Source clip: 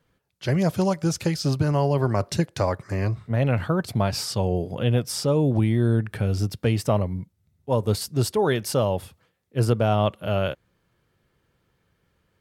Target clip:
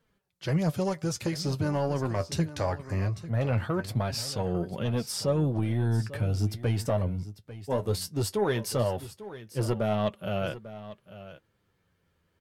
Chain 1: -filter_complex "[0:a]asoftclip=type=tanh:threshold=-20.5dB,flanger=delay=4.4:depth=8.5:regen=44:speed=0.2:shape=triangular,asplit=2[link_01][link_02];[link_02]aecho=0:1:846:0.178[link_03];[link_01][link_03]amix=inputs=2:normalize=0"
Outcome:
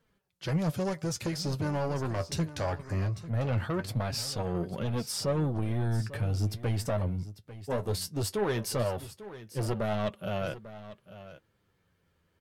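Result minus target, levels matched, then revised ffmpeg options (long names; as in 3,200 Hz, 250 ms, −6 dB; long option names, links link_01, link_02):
soft clipping: distortion +8 dB
-filter_complex "[0:a]asoftclip=type=tanh:threshold=-13.5dB,flanger=delay=4.4:depth=8.5:regen=44:speed=0.2:shape=triangular,asplit=2[link_01][link_02];[link_02]aecho=0:1:846:0.178[link_03];[link_01][link_03]amix=inputs=2:normalize=0"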